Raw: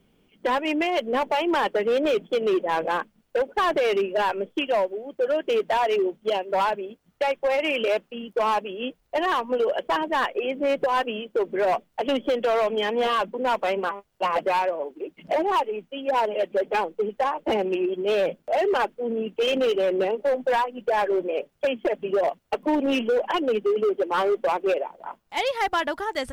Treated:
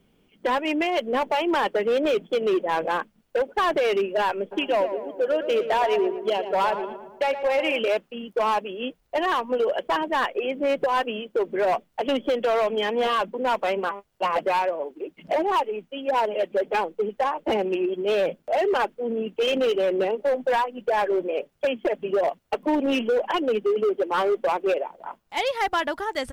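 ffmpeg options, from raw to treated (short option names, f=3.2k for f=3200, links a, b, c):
-filter_complex "[0:a]asplit=3[a][b][c];[a]afade=t=out:st=4.51:d=0.02[d];[b]asplit=2[e][f];[f]adelay=114,lowpass=f=2.1k:p=1,volume=-9.5dB,asplit=2[g][h];[h]adelay=114,lowpass=f=2.1k:p=1,volume=0.55,asplit=2[i][j];[j]adelay=114,lowpass=f=2.1k:p=1,volume=0.55,asplit=2[k][l];[l]adelay=114,lowpass=f=2.1k:p=1,volume=0.55,asplit=2[m][n];[n]adelay=114,lowpass=f=2.1k:p=1,volume=0.55,asplit=2[o][p];[p]adelay=114,lowpass=f=2.1k:p=1,volume=0.55[q];[e][g][i][k][m][o][q]amix=inputs=7:normalize=0,afade=t=in:st=4.51:d=0.02,afade=t=out:st=7.78:d=0.02[r];[c]afade=t=in:st=7.78:d=0.02[s];[d][r][s]amix=inputs=3:normalize=0"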